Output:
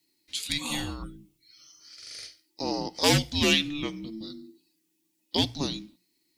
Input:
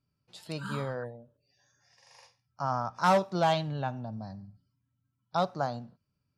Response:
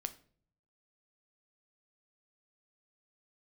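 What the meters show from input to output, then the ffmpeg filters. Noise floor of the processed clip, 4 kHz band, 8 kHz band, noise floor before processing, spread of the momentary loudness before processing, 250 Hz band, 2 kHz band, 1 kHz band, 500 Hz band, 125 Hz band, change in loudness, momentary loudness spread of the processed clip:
-74 dBFS, +15.0 dB, +17.0 dB, -81 dBFS, 18 LU, +6.5 dB, +6.5 dB, -7.0 dB, -1.5 dB, +1.5 dB, +3.5 dB, 20 LU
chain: -af "aexciter=amount=3.4:drive=9.1:freq=2.3k,afreqshift=-440,bandreject=f=60:t=h:w=6,bandreject=f=120:t=h:w=6,bandreject=f=180:t=h:w=6"

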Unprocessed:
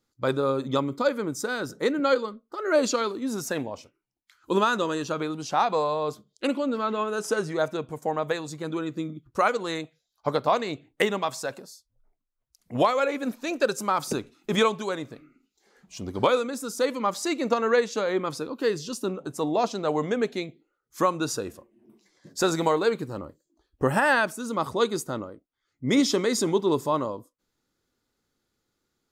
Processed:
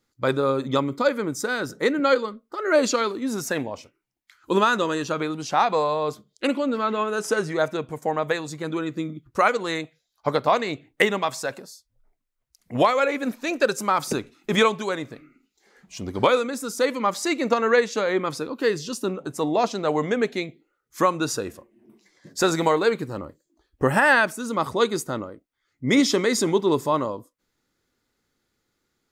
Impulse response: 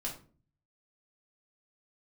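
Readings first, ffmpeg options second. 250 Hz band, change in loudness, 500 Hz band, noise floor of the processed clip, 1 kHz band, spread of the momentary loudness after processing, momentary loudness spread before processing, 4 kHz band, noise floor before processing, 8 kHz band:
+2.5 dB, +3.0 dB, +2.5 dB, -76 dBFS, +3.0 dB, 11 LU, 12 LU, +3.0 dB, -79 dBFS, +2.5 dB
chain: -af "equalizer=f=2k:w=2.1:g=4.5,volume=2.5dB"

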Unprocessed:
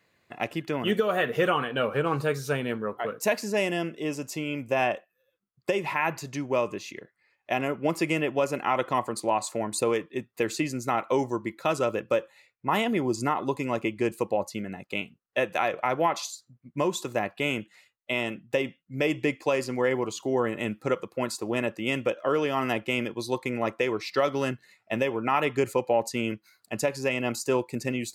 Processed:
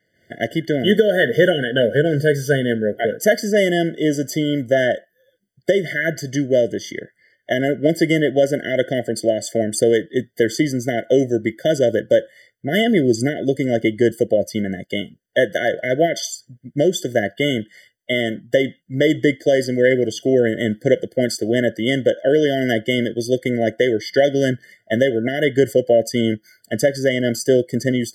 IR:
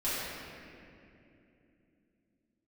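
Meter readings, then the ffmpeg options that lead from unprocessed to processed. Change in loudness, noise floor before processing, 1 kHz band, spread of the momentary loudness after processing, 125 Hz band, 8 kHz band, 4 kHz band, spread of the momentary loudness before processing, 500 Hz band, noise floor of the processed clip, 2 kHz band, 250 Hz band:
+9.5 dB, -75 dBFS, -3.0 dB, 8 LU, +11.0 dB, +7.5 dB, +9.5 dB, 7 LU, +10.5 dB, -66 dBFS, +8.0 dB, +11.0 dB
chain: -af "dynaudnorm=f=130:g=3:m=13dB,afftfilt=real='re*eq(mod(floor(b*sr/1024/720),2),0)':imag='im*eq(mod(floor(b*sr/1024/720),2),0)':win_size=1024:overlap=0.75"

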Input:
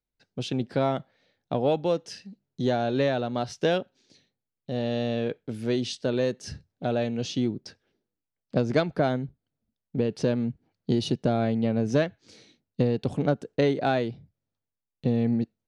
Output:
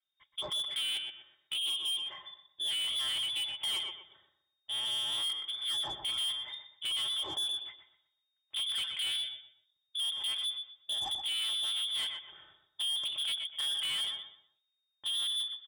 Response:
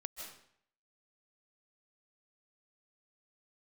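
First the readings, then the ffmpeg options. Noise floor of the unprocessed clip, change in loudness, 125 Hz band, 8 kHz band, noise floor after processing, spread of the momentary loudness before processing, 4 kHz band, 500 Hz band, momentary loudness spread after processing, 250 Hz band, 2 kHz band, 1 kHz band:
under -85 dBFS, -5.0 dB, under -30 dB, +5.0 dB, -83 dBFS, 10 LU, +11.5 dB, -30.5 dB, 11 LU, under -35 dB, -7.0 dB, -16.0 dB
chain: -filter_complex "[0:a]equalizer=f=190:w=2.8:g=-10,bandreject=f=60:t=h:w=6,bandreject=f=120:t=h:w=6,bandreject=f=180:t=h:w=6,bandreject=f=240:t=h:w=6,bandreject=f=300:t=h:w=6,aecho=1:1:4.2:0.74,acrossover=split=130[a][b];[b]alimiter=limit=-17.5dB:level=0:latency=1[c];[a][c]amix=inputs=2:normalize=0,acontrast=66,lowpass=f=3.1k:t=q:w=0.5098,lowpass=f=3.1k:t=q:w=0.6013,lowpass=f=3.1k:t=q:w=0.9,lowpass=f=3.1k:t=q:w=2.563,afreqshift=-3700,asplit=2[d][e];[e]adelay=123,lowpass=f=2.8k:p=1,volume=-8.5dB,asplit=2[f][g];[g]adelay=123,lowpass=f=2.8k:p=1,volume=0.33,asplit=2[h][i];[i]adelay=123,lowpass=f=2.8k:p=1,volume=0.33,asplit=2[j][k];[k]adelay=123,lowpass=f=2.8k:p=1,volume=0.33[l];[f][h][j][l]amix=inputs=4:normalize=0[m];[d][m]amix=inputs=2:normalize=0,asoftclip=type=tanh:threshold=-24dB,volume=-7dB"

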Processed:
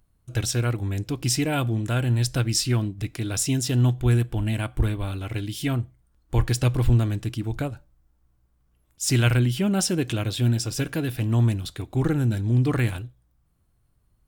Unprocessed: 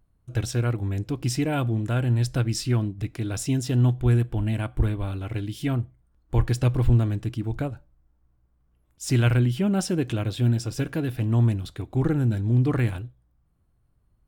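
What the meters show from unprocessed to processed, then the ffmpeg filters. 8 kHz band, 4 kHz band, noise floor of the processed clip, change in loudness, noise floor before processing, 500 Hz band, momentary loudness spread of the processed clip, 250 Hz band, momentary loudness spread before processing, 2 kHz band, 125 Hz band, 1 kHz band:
+8.0 dB, +6.5 dB, -66 dBFS, +0.5 dB, -67 dBFS, +0.5 dB, 9 LU, 0.0 dB, 9 LU, +3.5 dB, 0.0 dB, +1.5 dB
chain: -af "highshelf=f=2.3k:g=8.5"

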